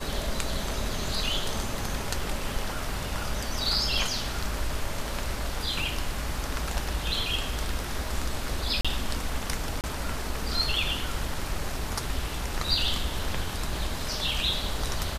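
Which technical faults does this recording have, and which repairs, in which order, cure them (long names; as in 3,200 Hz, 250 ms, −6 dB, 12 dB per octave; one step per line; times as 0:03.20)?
0:08.81–0:08.85: drop-out 36 ms
0:09.81–0:09.84: drop-out 28 ms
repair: repair the gap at 0:08.81, 36 ms
repair the gap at 0:09.81, 28 ms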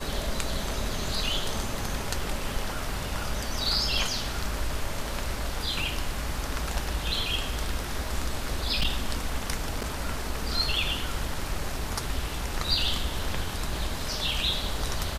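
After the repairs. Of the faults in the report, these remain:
none of them is left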